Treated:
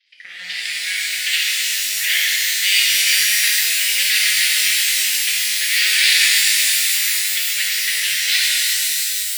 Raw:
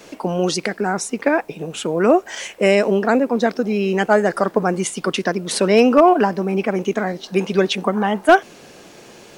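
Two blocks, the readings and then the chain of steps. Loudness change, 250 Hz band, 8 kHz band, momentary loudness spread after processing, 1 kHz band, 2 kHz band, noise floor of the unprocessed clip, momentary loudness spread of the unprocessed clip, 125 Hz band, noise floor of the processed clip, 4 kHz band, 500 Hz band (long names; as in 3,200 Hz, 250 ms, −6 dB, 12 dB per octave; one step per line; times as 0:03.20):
+3.5 dB, below −35 dB, +15.5 dB, 6 LU, −23.5 dB, +7.5 dB, −44 dBFS, 8 LU, below −35 dB, −31 dBFS, +15.5 dB, below −35 dB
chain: harmonic generator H 3 −10 dB, 5 −27 dB, 7 −26 dB, 8 −7 dB, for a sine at −2 dBFS
elliptic band-pass filter 1,900–4,900 Hz, stop band 40 dB
reverb with rising layers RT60 3.7 s, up +12 semitones, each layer −2 dB, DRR −7 dB
level −3.5 dB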